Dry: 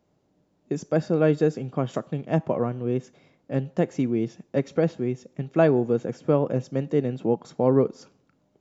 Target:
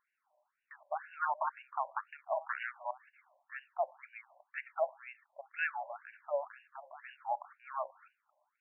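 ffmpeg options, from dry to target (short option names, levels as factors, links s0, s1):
-filter_complex "[0:a]asettb=1/sr,asplit=3[s0][s1][s2];[s0]atrim=end=1.254[s3];[s1]atrim=start=1.25:end=2.91,asetpts=PTS-STARTPTS,afade=t=in:d=0.004:c=qsin,afade=t=out:st=1.656:d=0.004:c=qsin,aeval=exprs='0.075*(abs(mod(val(0)/0.075+3,4)-2)-1)':c=same[s4];[s2]atrim=start=2.906[s5];[s3][s4]acrossfade=d=0.004:c1=hsin:c2=qsin[s6];[s6][s5]acrossfade=d=0.004:c1=qsin:c2=hsin,asettb=1/sr,asplit=3[s7][s8][s9];[s7]atrim=end=6.064[s10];[s8]atrim=start=6.06:end=6.65,asetpts=PTS-STARTPTS,afade=t=in:d=0.004:c=qsin,afade=t=out:st=0.586:d=0.004:c=qsin,acrossover=split=360|3000[s11][s12][s13];[s12]acompressor=threshold=0.0251:ratio=6[s14];[s11][s14][s13]amix=inputs=3:normalize=0[s15];[s9]atrim=start=6.646[s16];[s10][s15]acrossfade=d=0.004:c1=hsin:c2=qsin[s17];[s17][s16]acrossfade=d=0.004:c1=qsin:c2=hsin,afftfilt=real='re*between(b*sr/1024,750*pow(2100/750,0.5+0.5*sin(2*PI*2*pts/sr))/1.41,750*pow(2100/750,0.5+0.5*sin(2*PI*2*pts/sr))*1.41)':imag='im*between(b*sr/1024,750*pow(2100/750,0.5+0.5*sin(2*PI*2*pts/sr))/1.41,750*pow(2100/750,0.5+0.5*sin(2*PI*2*pts/sr))*1.41)':win_size=1024:overlap=0.75,volume=1.19"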